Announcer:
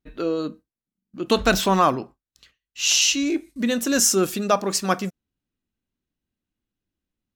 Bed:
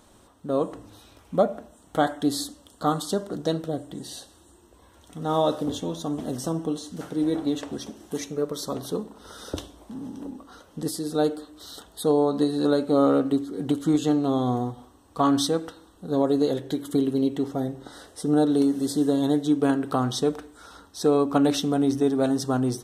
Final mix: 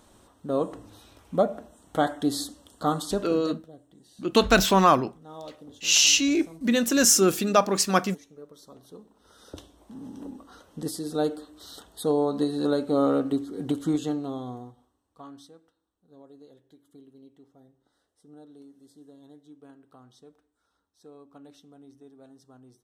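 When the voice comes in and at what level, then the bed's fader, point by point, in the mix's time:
3.05 s, 0.0 dB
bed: 0:03.26 −1.5 dB
0:03.69 −19 dB
0:08.83 −19 dB
0:10.19 −3 dB
0:13.86 −3 dB
0:15.60 −29 dB

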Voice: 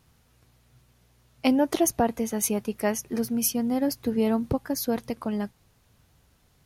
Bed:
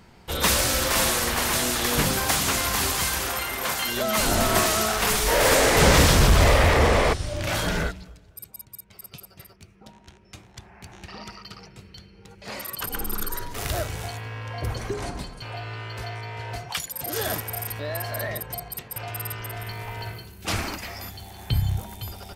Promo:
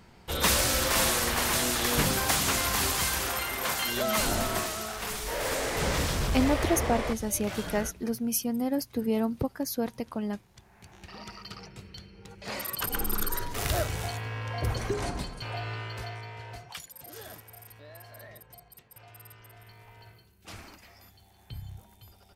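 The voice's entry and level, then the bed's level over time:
4.90 s, −3.5 dB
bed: 0:04.12 −3 dB
0:04.76 −12 dB
0:10.53 −12 dB
0:11.56 −0.5 dB
0:15.70 −0.5 dB
0:17.33 −18 dB

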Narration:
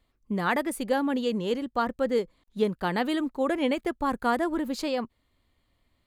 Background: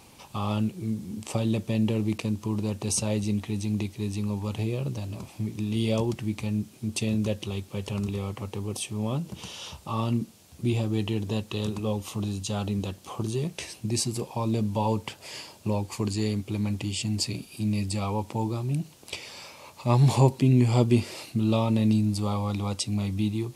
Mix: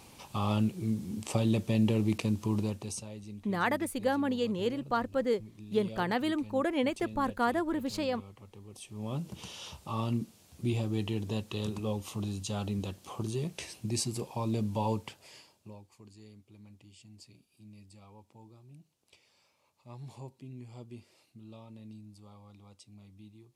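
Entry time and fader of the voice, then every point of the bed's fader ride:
3.15 s, −3.5 dB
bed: 0:02.60 −1.5 dB
0:03.11 −17.5 dB
0:08.70 −17.5 dB
0:09.20 −5 dB
0:14.93 −5 dB
0:15.94 −26 dB

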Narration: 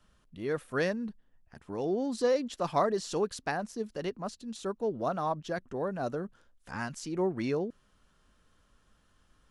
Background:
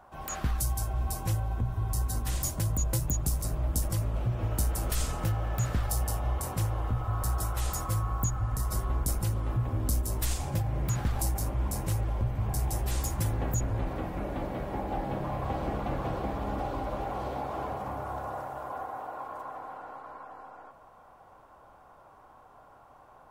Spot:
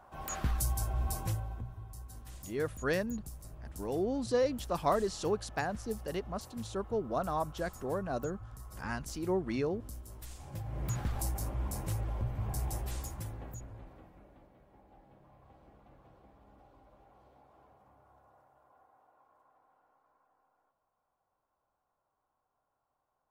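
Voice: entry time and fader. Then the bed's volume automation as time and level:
2.10 s, −2.0 dB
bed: 0:01.19 −2.5 dB
0:01.91 −17.5 dB
0:10.32 −17.5 dB
0:10.86 −5.5 dB
0:12.71 −5.5 dB
0:14.56 −28 dB

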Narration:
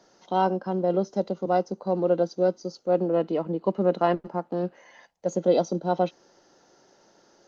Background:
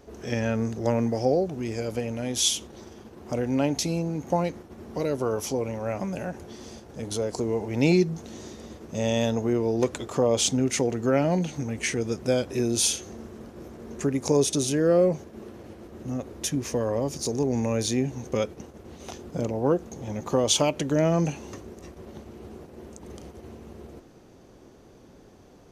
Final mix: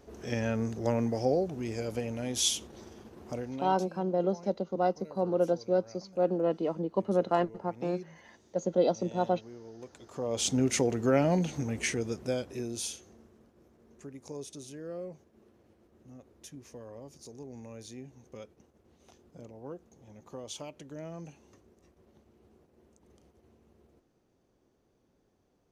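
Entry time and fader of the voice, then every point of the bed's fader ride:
3.30 s, −4.5 dB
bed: 0:03.22 −4.5 dB
0:03.88 −23 dB
0:09.84 −23 dB
0:10.58 −2.5 dB
0:11.76 −2.5 dB
0:13.55 −20 dB

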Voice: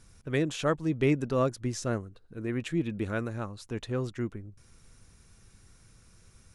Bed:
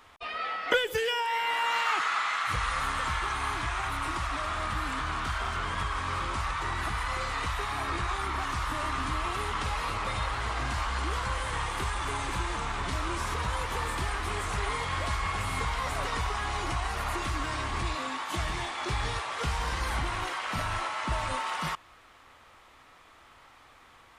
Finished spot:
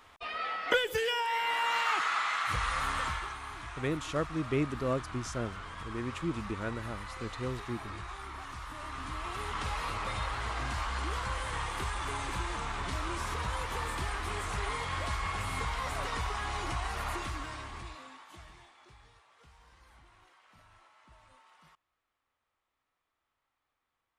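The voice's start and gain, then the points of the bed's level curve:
3.50 s, −5.0 dB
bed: 0:03.03 −2 dB
0:03.41 −11.5 dB
0:08.71 −11.5 dB
0:09.65 −3.5 dB
0:17.11 −3.5 dB
0:19.11 −29 dB

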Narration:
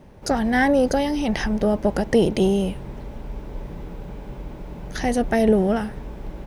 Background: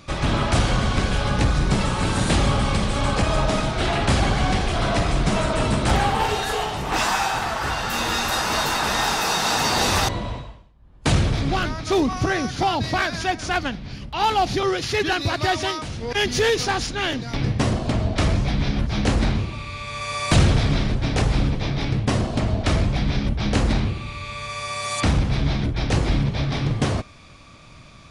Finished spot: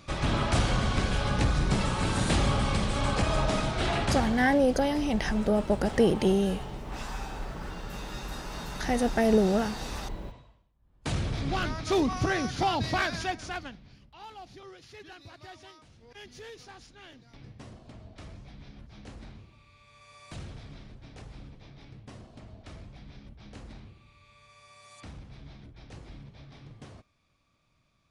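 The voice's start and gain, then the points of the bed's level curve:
3.85 s, −5.0 dB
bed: 0:03.98 −6 dB
0:04.62 −19.5 dB
0:10.49 −19.5 dB
0:11.70 −5.5 dB
0:13.13 −5.5 dB
0:14.25 −26 dB

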